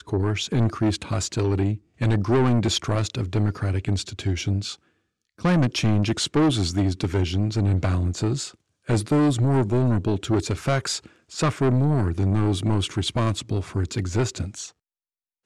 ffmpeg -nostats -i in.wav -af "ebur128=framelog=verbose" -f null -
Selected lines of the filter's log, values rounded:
Integrated loudness:
  I:         -23.6 LUFS
  Threshold: -33.9 LUFS
Loudness range:
  LRA:         2.3 LU
  Threshold: -43.7 LUFS
  LRA low:   -25.0 LUFS
  LRA high:  -22.8 LUFS